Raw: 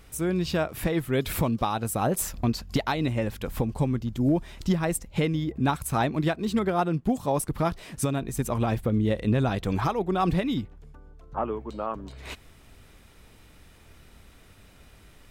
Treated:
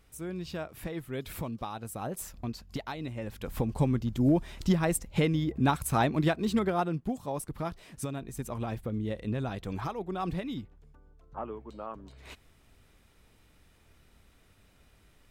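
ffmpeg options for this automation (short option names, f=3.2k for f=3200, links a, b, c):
-af "volume=-1dB,afade=t=in:st=3.18:d=0.65:silence=0.316228,afade=t=out:st=6.43:d=0.75:silence=0.398107"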